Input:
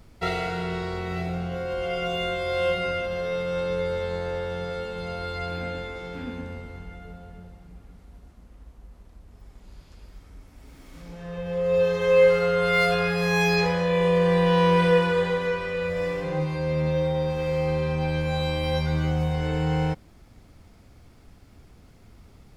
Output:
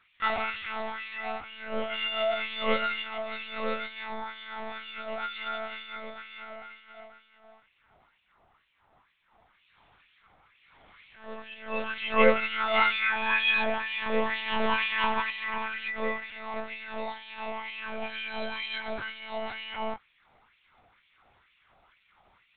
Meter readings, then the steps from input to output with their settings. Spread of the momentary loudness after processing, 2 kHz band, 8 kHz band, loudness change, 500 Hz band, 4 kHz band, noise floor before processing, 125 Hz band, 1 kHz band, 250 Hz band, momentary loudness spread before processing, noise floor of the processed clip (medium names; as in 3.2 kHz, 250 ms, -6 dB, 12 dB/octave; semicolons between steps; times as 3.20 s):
16 LU, 0.0 dB, no reading, -5.5 dB, -10.0 dB, 0.0 dB, -52 dBFS, under -25 dB, -2.0 dB, -10.5 dB, 15 LU, -68 dBFS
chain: chorus 0.23 Hz, delay 18 ms, depth 3.4 ms; LFO high-pass sine 2.1 Hz 670–2700 Hz; monotone LPC vocoder at 8 kHz 220 Hz